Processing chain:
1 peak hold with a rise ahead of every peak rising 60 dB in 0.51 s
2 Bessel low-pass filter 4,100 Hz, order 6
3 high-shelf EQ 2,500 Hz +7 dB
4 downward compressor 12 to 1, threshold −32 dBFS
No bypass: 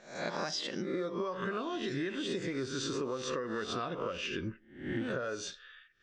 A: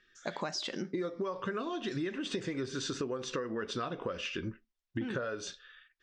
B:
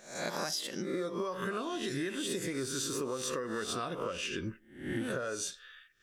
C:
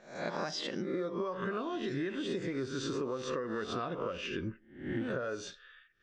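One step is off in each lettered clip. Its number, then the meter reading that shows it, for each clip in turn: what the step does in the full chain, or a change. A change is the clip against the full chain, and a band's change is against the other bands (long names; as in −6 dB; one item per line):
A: 1, change in crest factor +1.5 dB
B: 2, 8 kHz band +7.5 dB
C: 3, 8 kHz band −4.5 dB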